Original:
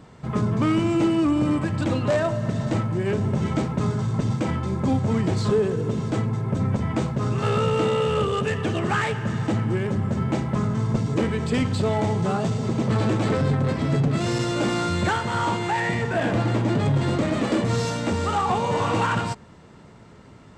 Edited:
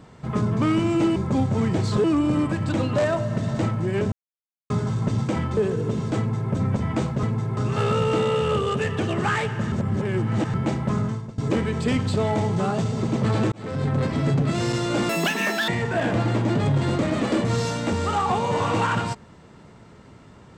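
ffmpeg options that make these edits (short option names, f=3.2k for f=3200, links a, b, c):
-filter_complex "[0:a]asplit=14[a][b][c][d][e][f][g][h][i][j][k][l][m][n];[a]atrim=end=1.162[o];[b]atrim=start=4.688:end=5.572[p];[c]atrim=start=1.158:end=3.24,asetpts=PTS-STARTPTS,afade=t=out:st=2.078:d=0.004:c=hsin[q];[d]atrim=start=3.24:end=3.82,asetpts=PTS-STARTPTS,volume=0[r];[e]atrim=start=3.82:end=4.692,asetpts=PTS-STARTPTS,afade=t=in:d=0.004:c=hsin[s];[f]atrim=start=5.568:end=7.232[t];[g]atrim=start=6.178:end=6.522[u];[h]atrim=start=7.228:end=9.382[v];[i]atrim=start=9.378:end=10.202,asetpts=PTS-STARTPTS,areverse[w];[j]atrim=start=10.198:end=11.04,asetpts=PTS-STARTPTS,afade=t=out:st=0.522:d=0.32:c=qua:silence=0.125893[x];[k]atrim=start=11.04:end=13.18,asetpts=PTS-STARTPTS,afade=t=in:d=0.004:c=hsin:silence=0.125893,afade=t=out:st=2.136:d=0.004:c=hsin[y];[l]atrim=start=13.18:end=14.754,asetpts=PTS-STARTPTS,afade=t=in:d=0.44[z];[m]atrim=start=14.75:end=15.88,asetpts=PTS-STARTPTS,asetrate=84231,aresample=44100[aa];[n]atrim=start=15.876[ab];[o][p]acrossfade=d=0.004:c1=hsin:c2=hsin[ac];[q][r][s]concat=n=3:v=0:a=1[ad];[ac][ad]acrossfade=d=0.004:c1=hsin:c2=hsin[ae];[ae][t]acrossfade=d=0.004:c1=hsin:c2=hsin[af];[af][u]acrossfade=d=0.004:c1=hsin:c2=hsin[ag];[ag][v]acrossfade=d=0.004:c1=hsin:c2=hsin[ah];[ah][w]acrossfade=d=0.004:c1=hsin:c2=hsin[ai];[x][y][z]concat=n=3:v=0:a=1[aj];[ai][aj]acrossfade=d=0.004:c1=hsin:c2=hsin[ak];[ak][aa]acrossfade=d=0.004:c1=hsin:c2=hsin[al];[al][ab]acrossfade=d=0.004:c1=hsin:c2=hsin"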